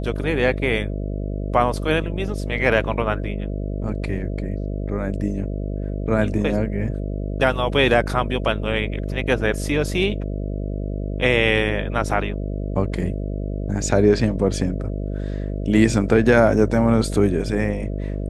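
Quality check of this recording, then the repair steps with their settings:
buzz 50 Hz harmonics 13 -26 dBFS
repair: de-hum 50 Hz, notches 13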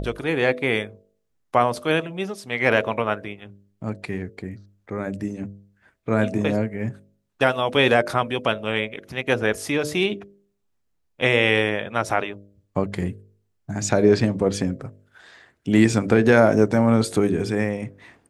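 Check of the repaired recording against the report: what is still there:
none

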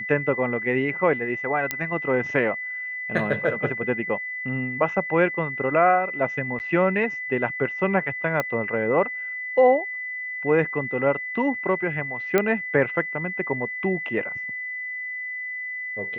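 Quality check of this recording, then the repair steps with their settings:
tone 2000 Hz -29 dBFS
1.71 pop -8 dBFS
6.59–6.6 gap 9.5 ms
8.4 pop -11 dBFS
12.38 pop -7 dBFS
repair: de-click; notch 2000 Hz, Q 30; interpolate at 6.59, 9.5 ms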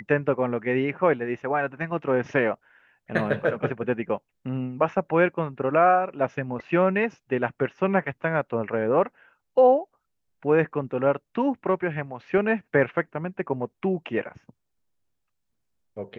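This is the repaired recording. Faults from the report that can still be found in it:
none

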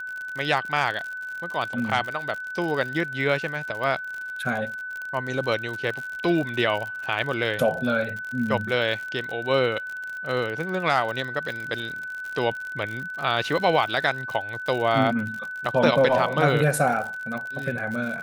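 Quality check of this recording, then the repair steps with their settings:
crackle 56/s -30 dBFS
tone 1500 Hz -31 dBFS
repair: de-click; notch 1500 Hz, Q 30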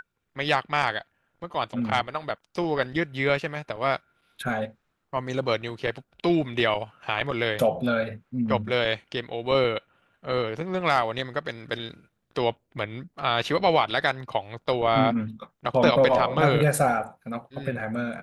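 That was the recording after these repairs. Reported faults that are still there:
none

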